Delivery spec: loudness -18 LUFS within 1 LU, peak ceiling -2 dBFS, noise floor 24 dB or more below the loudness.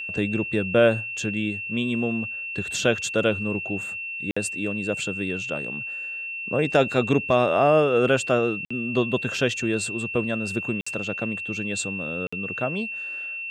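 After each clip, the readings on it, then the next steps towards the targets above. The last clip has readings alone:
dropouts 4; longest dropout 55 ms; steady tone 2700 Hz; tone level -30 dBFS; loudness -24.5 LUFS; peak -7.5 dBFS; loudness target -18.0 LUFS
-> interpolate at 4.31/8.65/10.81/12.27, 55 ms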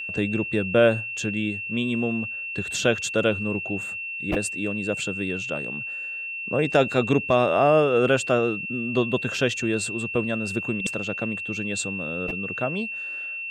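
dropouts 0; steady tone 2700 Hz; tone level -30 dBFS
-> notch 2700 Hz, Q 30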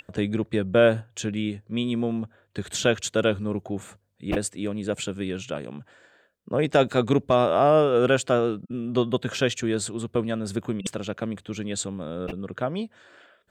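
steady tone none; loudness -25.5 LUFS; peak -8.0 dBFS; loudness target -18.0 LUFS
-> gain +7.5 dB; limiter -2 dBFS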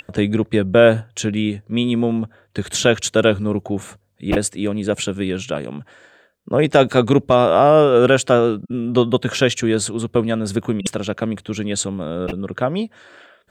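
loudness -18.5 LUFS; peak -2.0 dBFS; noise floor -58 dBFS

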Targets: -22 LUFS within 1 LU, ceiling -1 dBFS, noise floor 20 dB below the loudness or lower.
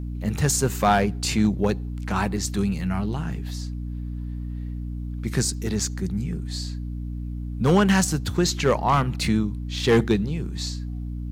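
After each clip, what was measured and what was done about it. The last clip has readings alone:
clipped 0.4%; flat tops at -11.5 dBFS; hum 60 Hz; harmonics up to 300 Hz; hum level -28 dBFS; loudness -24.5 LUFS; peak -11.5 dBFS; loudness target -22.0 LUFS
-> clip repair -11.5 dBFS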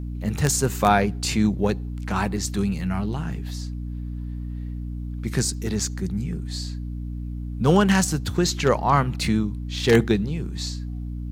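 clipped 0.0%; hum 60 Hz; harmonics up to 300 Hz; hum level -28 dBFS
-> de-hum 60 Hz, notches 5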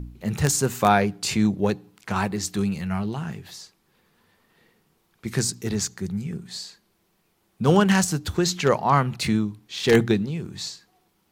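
hum none; loudness -23.5 LUFS; peak -3.0 dBFS; loudness target -22.0 LUFS
-> gain +1.5 dB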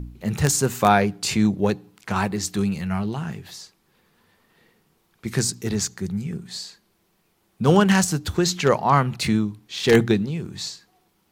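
loudness -22.0 LUFS; peak -1.5 dBFS; noise floor -66 dBFS

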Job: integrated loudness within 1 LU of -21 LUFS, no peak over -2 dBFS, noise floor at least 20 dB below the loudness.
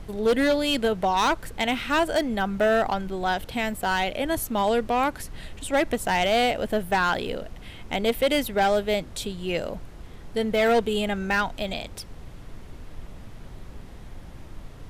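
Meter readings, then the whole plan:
clipped 1.2%; flat tops at -16.0 dBFS; noise floor -43 dBFS; noise floor target -45 dBFS; loudness -24.5 LUFS; peak -16.0 dBFS; loudness target -21.0 LUFS
-> clip repair -16 dBFS; noise print and reduce 6 dB; gain +3.5 dB

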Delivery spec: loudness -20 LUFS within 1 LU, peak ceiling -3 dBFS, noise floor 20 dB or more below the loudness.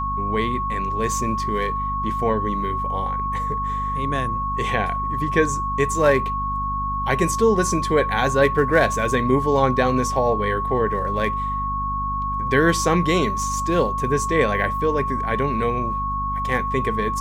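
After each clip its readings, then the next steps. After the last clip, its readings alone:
hum 50 Hz; harmonics up to 250 Hz; hum level -27 dBFS; steady tone 1100 Hz; tone level -23 dBFS; loudness -21.5 LUFS; peak -4.5 dBFS; loudness target -20.0 LUFS
-> de-hum 50 Hz, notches 5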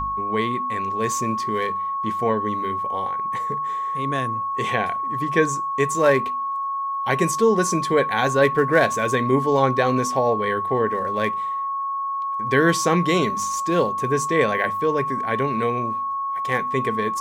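hum none; steady tone 1100 Hz; tone level -23 dBFS
-> notch 1100 Hz, Q 30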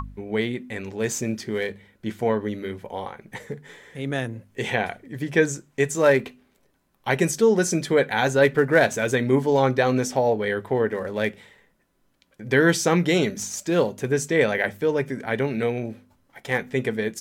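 steady tone none; loudness -23.0 LUFS; peak -5.0 dBFS; loudness target -20.0 LUFS
-> gain +3 dB; limiter -3 dBFS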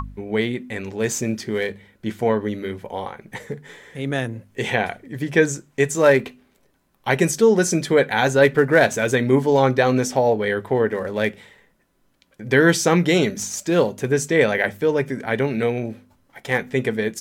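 loudness -20.0 LUFS; peak -3.0 dBFS; noise floor -63 dBFS

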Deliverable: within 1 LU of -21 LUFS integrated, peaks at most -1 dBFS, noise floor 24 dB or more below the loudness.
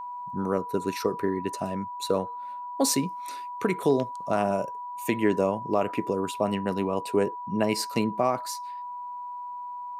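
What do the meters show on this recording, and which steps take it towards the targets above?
steady tone 980 Hz; tone level -34 dBFS; loudness -28.5 LUFS; peak -11.5 dBFS; loudness target -21.0 LUFS
-> notch 980 Hz, Q 30; gain +7.5 dB

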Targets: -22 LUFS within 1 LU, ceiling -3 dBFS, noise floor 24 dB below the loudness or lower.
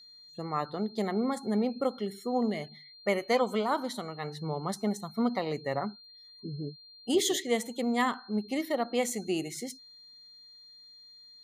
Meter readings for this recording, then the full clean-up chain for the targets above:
steady tone 4200 Hz; tone level -51 dBFS; loudness -31.5 LUFS; peak -15.0 dBFS; loudness target -22.0 LUFS
-> notch 4200 Hz, Q 30; gain +9.5 dB

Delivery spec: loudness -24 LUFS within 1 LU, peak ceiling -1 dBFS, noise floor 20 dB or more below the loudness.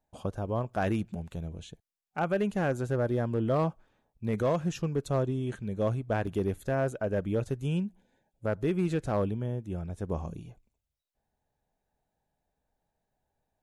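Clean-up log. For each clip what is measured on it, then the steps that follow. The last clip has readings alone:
clipped 0.5%; flat tops at -20.5 dBFS; dropouts 1; longest dropout 3.9 ms; loudness -31.5 LUFS; peak -20.5 dBFS; loudness target -24.0 LUFS
-> clip repair -20.5 dBFS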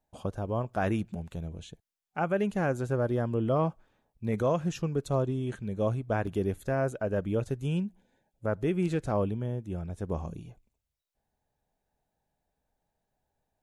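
clipped 0.0%; dropouts 1; longest dropout 3.9 ms
-> interpolate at 6.27, 3.9 ms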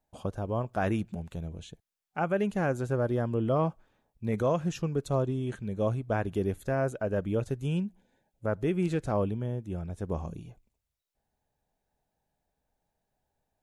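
dropouts 0; loudness -31.0 LUFS; peak -16.5 dBFS; loudness target -24.0 LUFS
-> gain +7 dB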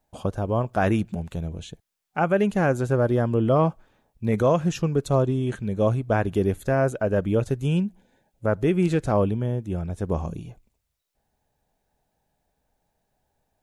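loudness -24.0 LUFS; peak -9.5 dBFS; noise floor -78 dBFS

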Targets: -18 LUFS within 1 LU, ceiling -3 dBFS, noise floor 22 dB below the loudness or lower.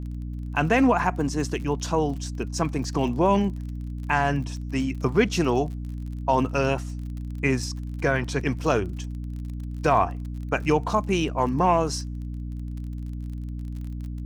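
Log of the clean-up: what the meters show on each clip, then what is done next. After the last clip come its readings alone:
ticks 36/s; hum 60 Hz; harmonics up to 300 Hz; hum level -30 dBFS; loudness -26.0 LUFS; peak -7.0 dBFS; loudness target -18.0 LUFS
-> de-click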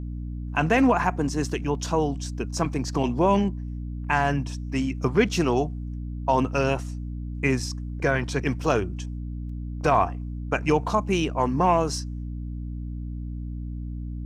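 ticks 0.070/s; hum 60 Hz; harmonics up to 300 Hz; hum level -30 dBFS
-> de-hum 60 Hz, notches 5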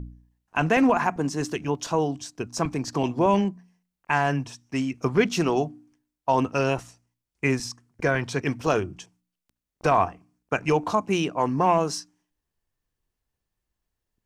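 hum none; loudness -25.0 LUFS; peak -7.5 dBFS; loudness target -18.0 LUFS
-> gain +7 dB; limiter -3 dBFS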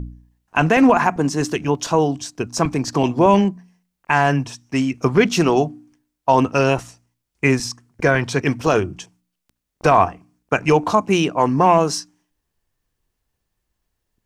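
loudness -18.5 LUFS; peak -3.0 dBFS; noise floor -78 dBFS

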